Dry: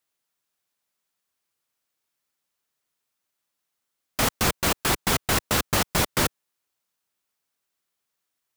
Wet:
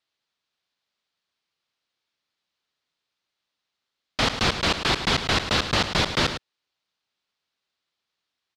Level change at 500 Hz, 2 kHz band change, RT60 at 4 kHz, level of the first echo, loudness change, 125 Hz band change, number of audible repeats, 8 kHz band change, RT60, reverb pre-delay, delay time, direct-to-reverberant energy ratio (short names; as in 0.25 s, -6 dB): +0.5 dB, +2.0 dB, none, -10.0 dB, +1.0 dB, +0.5 dB, 1, -7.5 dB, none, none, 0.106 s, none